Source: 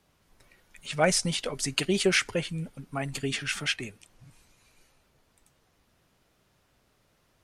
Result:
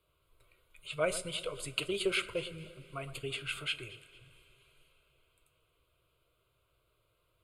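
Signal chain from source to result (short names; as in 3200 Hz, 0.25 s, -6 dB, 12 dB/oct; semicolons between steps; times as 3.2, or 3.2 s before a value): fixed phaser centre 1200 Hz, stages 8; on a send: echo with dull and thin repeats by turns 0.114 s, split 1800 Hz, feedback 59%, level -13.5 dB; on the sum: two-slope reverb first 0.2 s, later 4.5 s, from -22 dB, DRR 10.5 dB; gain -5 dB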